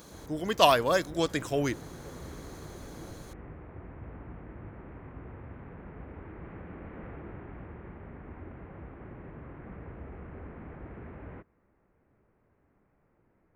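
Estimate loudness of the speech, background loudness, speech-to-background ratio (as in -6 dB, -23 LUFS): -27.0 LUFS, -46.0 LUFS, 19.0 dB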